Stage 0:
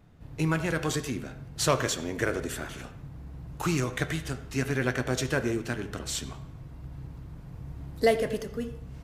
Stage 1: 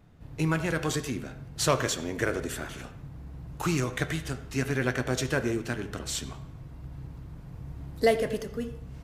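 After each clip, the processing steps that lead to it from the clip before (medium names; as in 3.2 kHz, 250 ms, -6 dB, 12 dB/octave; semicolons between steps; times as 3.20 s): no audible change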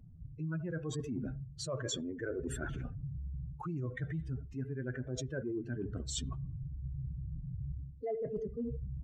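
spectral contrast enhancement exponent 2.4; reverse; compression 12:1, threshold -37 dBFS, peak gain reduction 19 dB; reverse; trim +2.5 dB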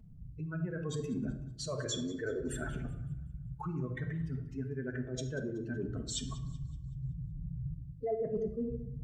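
thinning echo 188 ms, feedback 41%, high-pass 350 Hz, level -19 dB; simulated room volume 1900 m³, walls furnished, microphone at 1.5 m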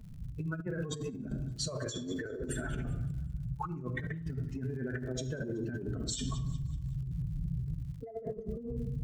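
crackle 110 per s -56 dBFS; compressor with a negative ratio -39 dBFS, ratio -0.5; trim +3.5 dB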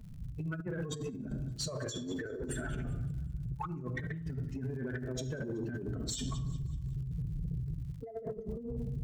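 saturation -27.5 dBFS, distortion -22 dB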